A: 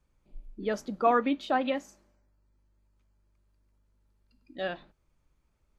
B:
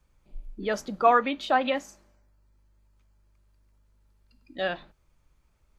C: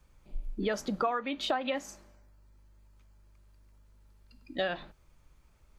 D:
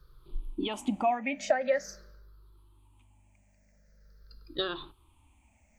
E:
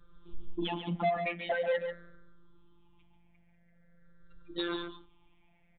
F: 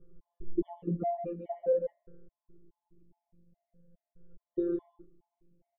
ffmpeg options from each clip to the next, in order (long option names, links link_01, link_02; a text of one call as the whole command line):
ffmpeg -i in.wav -filter_complex "[0:a]equalizer=frequency=280:width_type=o:width=1.9:gain=-4,acrossover=split=440[link_01][link_02];[link_01]alimiter=level_in=10.5dB:limit=-24dB:level=0:latency=1,volume=-10.5dB[link_03];[link_03][link_02]amix=inputs=2:normalize=0,volume=6dB" out.wav
ffmpeg -i in.wav -af "acompressor=threshold=-31dB:ratio=12,volume=4dB" out.wav
ffmpeg -i in.wav -af "afftfilt=real='re*pow(10,21/40*sin(2*PI*(0.6*log(max(b,1)*sr/1024/100)/log(2)-(-0.45)*(pts-256)/sr)))':imag='im*pow(10,21/40*sin(2*PI*(0.6*log(max(b,1)*sr/1024/100)/log(2)-(-0.45)*(pts-256)/sr)))':win_size=1024:overlap=0.75,volume=-2.5dB" out.wav
ffmpeg -i in.wav -filter_complex "[0:a]afftfilt=real='hypot(re,im)*cos(PI*b)':imag='0':win_size=1024:overlap=0.75,aresample=8000,asoftclip=type=tanh:threshold=-28.5dB,aresample=44100,asplit=2[link_01][link_02];[link_02]adelay=139.9,volume=-7dB,highshelf=frequency=4000:gain=-3.15[link_03];[link_01][link_03]amix=inputs=2:normalize=0,volume=4dB" out.wav
ffmpeg -i in.wav -filter_complex "[0:a]lowpass=frequency=410:width_type=q:width=4.9,asplit=2[link_01][link_02];[link_02]adelay=13,volume=-8dB[link_03];[link_01][link_03]amix=inputs=2:normalize=0,afftfilt=real='re*gt(sin(2*PI*2.4*pts/sr)*(1-2*mod(floor(b*sr/1024/580),2)),0)':imag='im*gt(sin(2*PI*2.4*pts/sr)*(1-2*mod(floor(b*sr/1024/580),2)),0)':win_size=1024:overlap=0.75" out.wav